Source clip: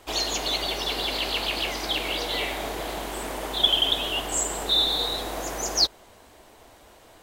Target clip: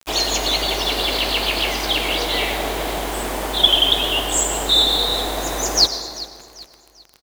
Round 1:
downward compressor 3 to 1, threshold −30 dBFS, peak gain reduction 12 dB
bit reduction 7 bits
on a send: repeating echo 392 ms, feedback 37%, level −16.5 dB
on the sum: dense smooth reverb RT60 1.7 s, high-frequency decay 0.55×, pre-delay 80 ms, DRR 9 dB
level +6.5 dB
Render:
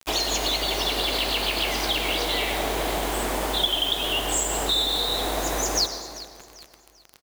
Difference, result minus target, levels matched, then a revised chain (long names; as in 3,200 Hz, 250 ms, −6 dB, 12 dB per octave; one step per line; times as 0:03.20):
downward compressor: peak gain reduction +12 dB
bit reduction 7 bits
on a send: repeating echo 392 ms, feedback 37%, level −16.5 dB
on the sum: dense smooth reverb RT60 1.7 s, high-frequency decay 0.55×, pre-delay 80 ms, DRR 9 dB
level +6.5 dB